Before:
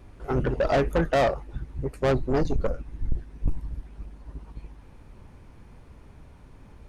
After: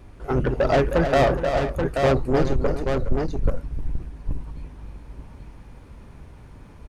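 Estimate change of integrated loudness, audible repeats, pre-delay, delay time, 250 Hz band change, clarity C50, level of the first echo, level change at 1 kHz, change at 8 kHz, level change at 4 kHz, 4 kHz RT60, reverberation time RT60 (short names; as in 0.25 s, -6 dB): +4.0 dB, 3, none, 0.312 s, +4.5 dB, none, -8.5 dB, +4.5 dB, n/a, +4.5 dB, none, none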